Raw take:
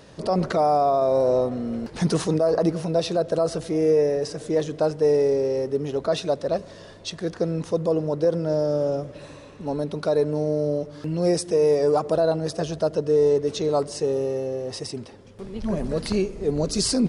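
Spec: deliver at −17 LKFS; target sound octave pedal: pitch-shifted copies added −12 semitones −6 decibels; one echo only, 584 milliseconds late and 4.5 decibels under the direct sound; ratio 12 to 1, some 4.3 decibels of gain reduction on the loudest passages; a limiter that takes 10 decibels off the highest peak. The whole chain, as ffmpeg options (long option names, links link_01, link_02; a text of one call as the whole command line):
ffmpeg -i in.wav -filter_complex "[0:a]acompressor=threshold=-20dB:ratio=12,alimiter=limit=-22.5dB:level=0:latency=1,aecho=1:1:584:0.596,asplit=2[link_01][link_02];[link_02]asetrate=22050,aresample=44100,atempo=2,volume=-6dB[link_03];[link_01][link_03]amix=inputs=2:normalize=0,volume=12dB" out.wav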